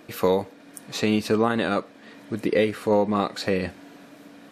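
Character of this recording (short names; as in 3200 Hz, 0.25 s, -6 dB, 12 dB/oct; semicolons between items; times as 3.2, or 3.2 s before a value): noise floor -49 dBFS; spectral tilt -4.5 dB/oct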